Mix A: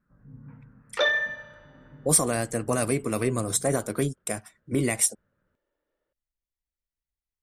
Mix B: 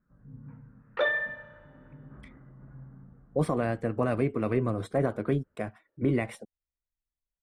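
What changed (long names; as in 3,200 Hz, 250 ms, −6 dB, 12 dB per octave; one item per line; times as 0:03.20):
speech: entry +1.30 s
master: add high-frequency loss of the air 470 metres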